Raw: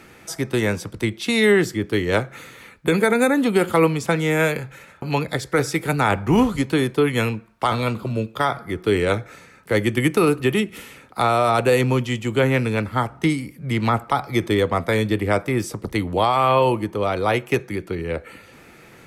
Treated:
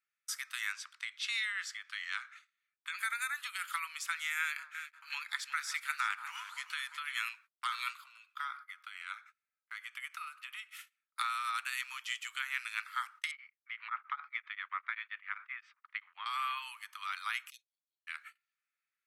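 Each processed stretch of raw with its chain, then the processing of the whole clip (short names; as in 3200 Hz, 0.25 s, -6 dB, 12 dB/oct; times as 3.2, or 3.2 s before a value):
0.72–2.99 LPF 6700 Hz + compressor 3:1, threshold -20 dBFS
4.39–7.26 HPF 180 Hz + high shelf 9300 Hz -8.5 dB + echo with dull and thin repeats by turns 0.177 s, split 1100 Hz, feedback 59%, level -8 dB
8.04–10.71 high shelf 2900 Hz -11.5 dB + notch 1800 Hz, Q 14 + compressor 5:1, threshold -21 dBFS
13.31–16.26 LPF 2600 Hz 24 dB/oct + beating tremolo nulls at 7.6 Hz
17.5–18.07 Chebyshev band-stop 140–3700 Hz, order 4 + tone controls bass -7 dB, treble -13 dB
whole clip: gate -36 dBFS, range -35 dB; compressor, threshold -18 dBFS; steep high-pass 1200 Hz 48 dB/oct; gain -6.5 dB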